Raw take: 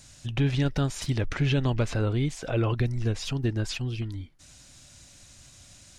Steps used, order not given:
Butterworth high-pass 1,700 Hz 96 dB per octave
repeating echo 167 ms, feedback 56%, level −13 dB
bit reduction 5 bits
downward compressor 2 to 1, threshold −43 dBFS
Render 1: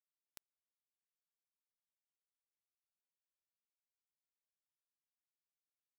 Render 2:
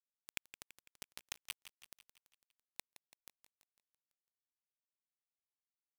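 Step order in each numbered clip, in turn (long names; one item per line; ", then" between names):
repeating echo, then downward compressor, then Butterworth high-pass, then bit reduction
Butterworth high-pass, then downward compressor, then bit reduction, then repeating echo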